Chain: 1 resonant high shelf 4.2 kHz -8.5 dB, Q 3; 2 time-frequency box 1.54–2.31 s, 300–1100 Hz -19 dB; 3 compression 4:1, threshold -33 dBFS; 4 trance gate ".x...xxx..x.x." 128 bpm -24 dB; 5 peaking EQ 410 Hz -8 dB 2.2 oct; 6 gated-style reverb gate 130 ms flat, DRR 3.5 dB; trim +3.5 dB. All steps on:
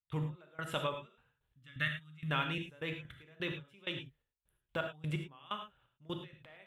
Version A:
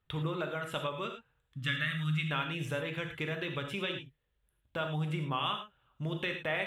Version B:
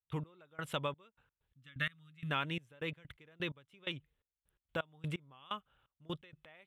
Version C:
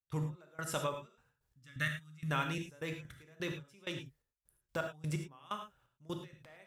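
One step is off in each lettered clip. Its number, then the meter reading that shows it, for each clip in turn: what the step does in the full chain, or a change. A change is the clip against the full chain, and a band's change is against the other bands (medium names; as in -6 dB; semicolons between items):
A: 4, momentary loudness spread change -7 LU; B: 6, loudness change -2.0 LU; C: 1, 4 kHz band -4.0 dB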